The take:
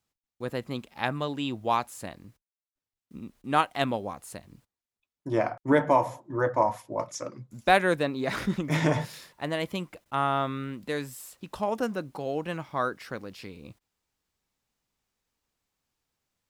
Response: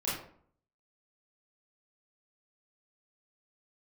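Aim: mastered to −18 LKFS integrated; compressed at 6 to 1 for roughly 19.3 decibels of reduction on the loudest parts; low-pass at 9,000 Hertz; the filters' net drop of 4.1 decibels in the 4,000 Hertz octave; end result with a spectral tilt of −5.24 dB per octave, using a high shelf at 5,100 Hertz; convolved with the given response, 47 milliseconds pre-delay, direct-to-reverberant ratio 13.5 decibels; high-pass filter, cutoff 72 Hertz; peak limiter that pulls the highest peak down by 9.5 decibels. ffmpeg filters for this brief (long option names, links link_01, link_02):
-filter_complex "[0:a]highpass=72,lowpass=9000,equalizer=frequency=4000:width_type=o:gain=-7,highshelf=frequency=5100:gain=4.5,acompressor=threshold=-38dB:ratio=6,alimiter=level_in=7dB:limit=-24dB:level=0:latency=1,volume=-7dB,asplit=2[link_01][link_02];[1:a]atrim=start_sample=2205,adelay=47[link_03];[link_02][link_03]afir=irnorm=-1:irlink=0,volume=-19.5dB[link_04];[link_01][link_04]amix=inputs=2:normalize=0,volume=26dB"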